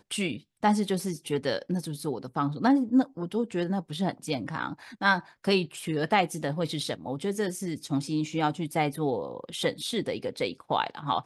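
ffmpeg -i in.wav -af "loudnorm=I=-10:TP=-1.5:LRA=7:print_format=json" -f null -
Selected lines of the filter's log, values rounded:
"input_i" : "-29.2",
"input_tp" : "-9.5",
"input_lra" : "1.8",
"input_thresh" : "-39.2",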